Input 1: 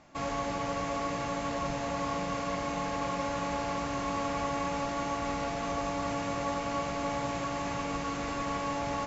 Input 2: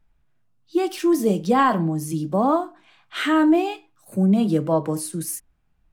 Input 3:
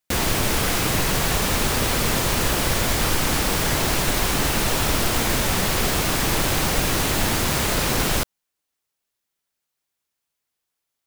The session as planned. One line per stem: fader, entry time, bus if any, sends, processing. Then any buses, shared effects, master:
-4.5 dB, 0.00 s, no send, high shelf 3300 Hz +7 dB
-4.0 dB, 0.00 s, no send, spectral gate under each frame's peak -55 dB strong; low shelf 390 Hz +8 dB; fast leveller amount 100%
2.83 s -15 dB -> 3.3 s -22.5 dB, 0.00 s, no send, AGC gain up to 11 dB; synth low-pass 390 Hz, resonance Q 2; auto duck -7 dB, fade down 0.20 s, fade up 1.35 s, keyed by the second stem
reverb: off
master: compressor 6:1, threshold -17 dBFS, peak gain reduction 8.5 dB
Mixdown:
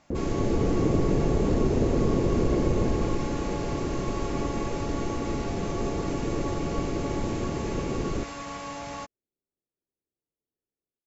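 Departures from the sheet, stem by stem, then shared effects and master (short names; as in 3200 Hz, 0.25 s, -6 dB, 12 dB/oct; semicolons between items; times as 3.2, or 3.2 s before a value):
stem 2: muted; stem 3 -15.0 dB -> -6.5 dB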